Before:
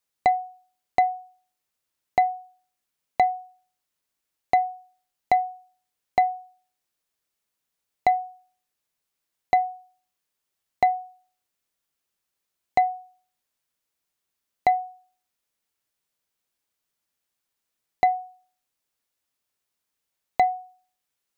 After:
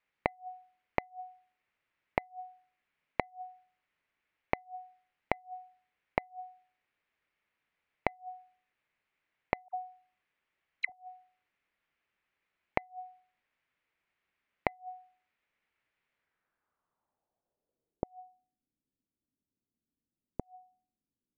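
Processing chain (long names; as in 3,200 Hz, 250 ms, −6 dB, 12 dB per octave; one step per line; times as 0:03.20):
0:09.68–0:10.92: all-pass dispersion lows, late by 70 ms, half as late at 1,200 Hz
low-pass filter sweep 2,200 Hz → 260 Hz, 0:16.13–0:18.44
gate with flip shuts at −18 dBFS, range −36 dB
level +1.5 dB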